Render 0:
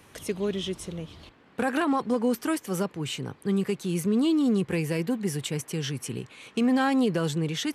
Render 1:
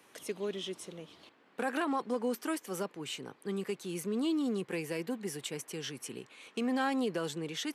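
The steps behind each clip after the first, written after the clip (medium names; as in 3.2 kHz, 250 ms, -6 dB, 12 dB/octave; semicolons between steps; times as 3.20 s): high-pass 270 Hz 12 dB/octave; trim -6 dB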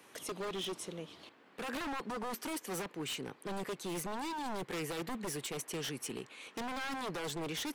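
peak limiter -27.5 dBFS, peak gain reduction 7.5 dB; wavefolder -35.5 dBFS; trim +2.5 dB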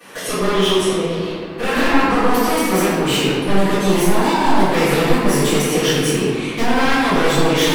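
reverberation RT60 2.2 s, pre-delay 3 ms, DRR -19 dB; trim +4 dB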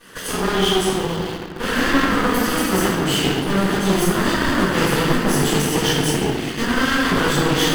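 comb filter that takes the minimum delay 0.64 ms; in parallel at -12 dB: bit crusher 4-bit; on the sum: trim -2.5 dB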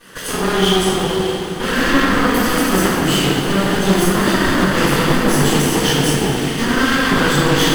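plate-style reverb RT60 4.1 s, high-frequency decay 1×, DRR 4.5 dB; trim +2 dB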